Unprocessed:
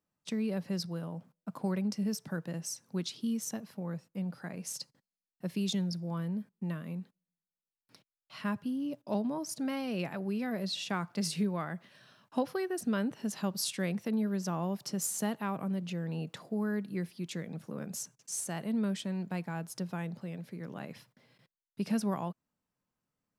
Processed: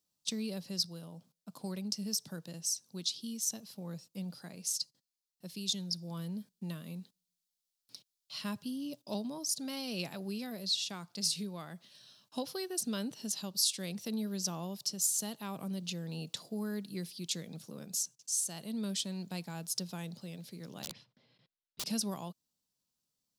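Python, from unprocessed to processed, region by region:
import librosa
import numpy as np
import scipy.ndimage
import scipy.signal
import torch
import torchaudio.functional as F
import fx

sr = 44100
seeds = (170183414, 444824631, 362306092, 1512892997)

y = fx.chain(x, sr, fx.lowpass(hz=2400.0, slope=12),
    fx.overflow_wrap(gain_db=36.5), at=(20.83, 21.86))
y = fx.high_shelf_res(y, sr, hz=2800.0, db=13.0, q=1.5)
y = fx.rider(y, sr, range_db=3, speed_s=0.5)
y = y * 10.0 ** (-7.5 / 20.0)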